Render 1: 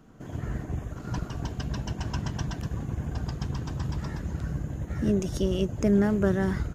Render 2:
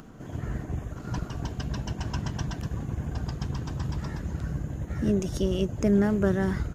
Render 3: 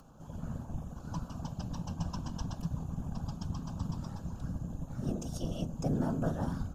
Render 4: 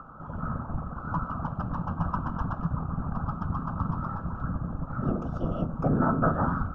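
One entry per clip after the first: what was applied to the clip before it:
upward compressor, threshold -40 dBFS
fixed phaser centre 820 Hz, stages 4; whisperiser; reverb RT60 0.65 s, pre-delay 3 ms, DRR 11 dB; gain -5 dB
synth low-pass 1300 Hz, resonance Q 9.9; gain +6 dB

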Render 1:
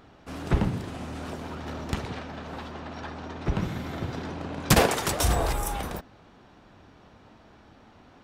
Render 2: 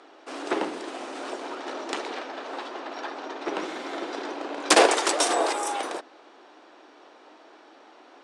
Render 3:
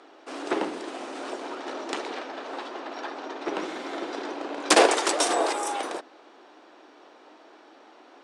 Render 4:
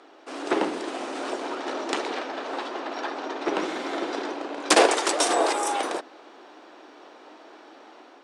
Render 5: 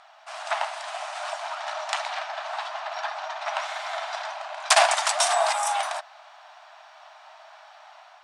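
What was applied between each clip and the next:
Chebyshev band-pass 310–9300 Hz, order 4; gain +5 dB
low shelf 320 Hz +3 dB; gain -1 dB
AGC gain up to 4 dB
brick-wall FIR high-pass 590 Hz; gain +1.5 dB

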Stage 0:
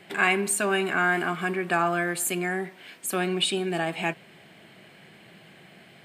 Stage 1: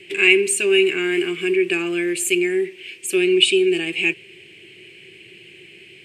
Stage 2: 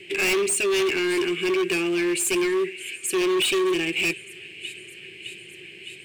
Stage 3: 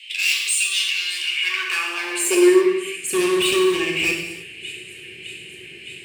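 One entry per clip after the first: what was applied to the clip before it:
EQ curve 110 Hz 0 dB, 160 Hz -8 dB, 250 Hz -12 dB, 370 Hz +9 dB, 660 Hz -20 dB, 1400 Hz -16 dB, 2600 Hz +12 dB, 3700 Hz -2 dB, 8100 Hz +2 dB, 14000 Hz -9 dB; gain +4.5 dB
thin delay 0.611 s, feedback 74%, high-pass 2000 Hz, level -18.5 dB; overloaded stage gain 20 dB
high-pass sweep 3300 Hz -> 64 Hz, 1.19–3.43; reverb, pre-delay 3 ms, DRR 0 dB

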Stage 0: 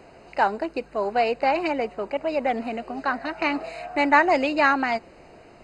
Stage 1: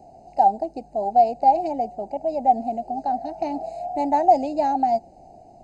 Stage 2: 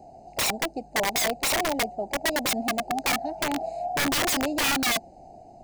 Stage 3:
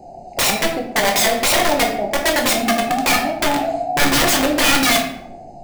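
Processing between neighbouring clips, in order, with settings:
EQ curve 250 Hz 0 dB, 490 Hz -9 dB, 780 Hz +11 dB, 1100 Hz -29 dB, 3000 Hz -20 dB, 6000 Hz -2 dB, 8800 Hz -5 dB
wrapped overs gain 19.5 dB
shoebox room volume 140 m³, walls mixed, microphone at 0.88 m; gain +6.5 dB

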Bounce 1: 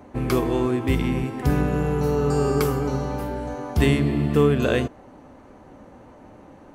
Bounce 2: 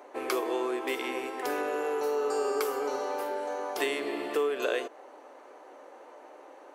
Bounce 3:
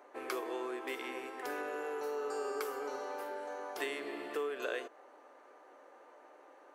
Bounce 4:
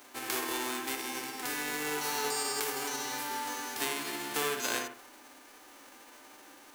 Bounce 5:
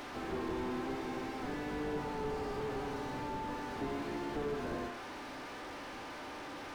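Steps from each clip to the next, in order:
inverse Chebyshev high-pass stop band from 190 Hz, stop band 40 dB; compressor 2.5:1, threshold -28 dBFS, peak gain reduction 7.5 dB
bell 1600 Hz +4.5 dB 0.73 oct; whine 1200 Hz -58 dBFS; gain -9 dB
spectral whitening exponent 0.3; analogue delay 60 ms, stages 1024, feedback 32%, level -4.5 dB; gain +3.5 dB
delta modulation 32 kbps, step -41 dBFS; slew limiter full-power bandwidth 6 Hz; gain +4.5 dB

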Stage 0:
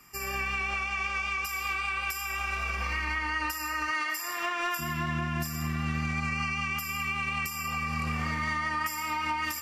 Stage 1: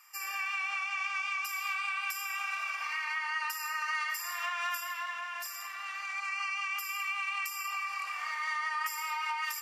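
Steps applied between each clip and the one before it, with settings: HPF 850 Hz 24 dB/oct; gain -2.5 dB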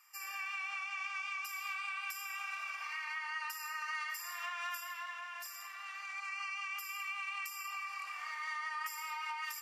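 low shelf 430 Hz -3.5 dB; gain -6 dB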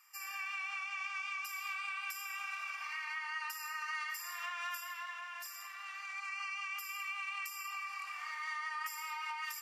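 HPF 630 Hz 12 dB/oct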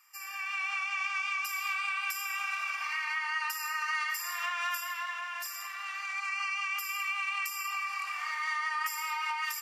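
AGC gain up to 6 dB; gain +1.5 dB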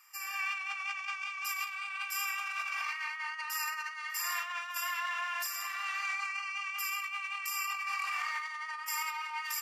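negative-ratio compressor -36 dBFS, ratio -0.5

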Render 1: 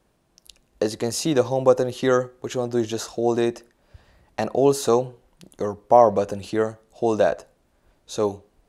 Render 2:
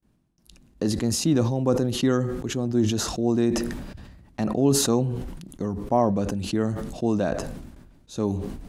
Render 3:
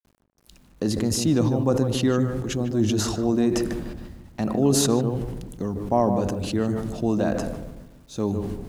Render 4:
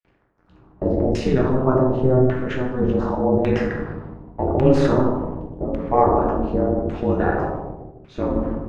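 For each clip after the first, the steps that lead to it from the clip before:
gate with hold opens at -54 dBFS; resonant low shelf 350 Hz +9.5 dB, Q 1.5; sustainer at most 42 dB/s; gain -7 dB
wow and flutter 26 cents; bit-crush 10-bit; on a send: darkening echo 0.15 s, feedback 40%, low-pass 920 Hz, level -5 dB
plate-style reverb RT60 0.67 s, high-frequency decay 0.95×, DRR -1.5 dB; LFO low-pass saw down 0.87 Hz 550–2500 Hz; ring modulator 130 Hz; gain +2.5 dB

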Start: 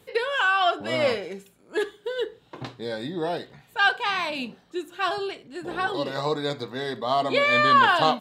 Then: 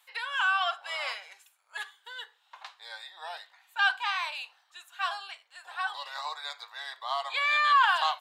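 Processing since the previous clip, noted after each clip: steep high-pass 810 Hz 36 dB/oct; gain -4 dB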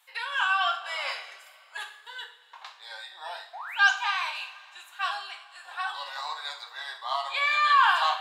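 painted sound rise, 3.53–3.91, 650–7400 Hz -40 dBFS; two-slope reverb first 0.43 s, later 2.7 s, from -18 dB, DRR 2 dB

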